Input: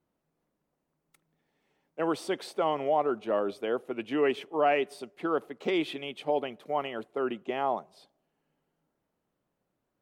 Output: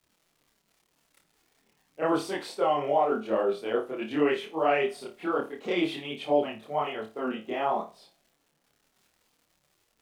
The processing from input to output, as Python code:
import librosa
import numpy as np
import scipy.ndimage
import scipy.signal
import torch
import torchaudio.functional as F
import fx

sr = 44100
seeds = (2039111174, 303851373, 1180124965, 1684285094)

y = fx.dmg_crackle(x, sr, seeds[0], per_s=160.0, level_db=-52.0)
y = fx.chorus_voices(y, sr, voices=2, hz=1.2, base_ms=26, depth_ms=3.1, mix_pct=65)
y = fx.room_flutter(y, sr, wall_m=4.7, rt60_s=0.26)
y = y * librosa.db_to_amplitude(3.5)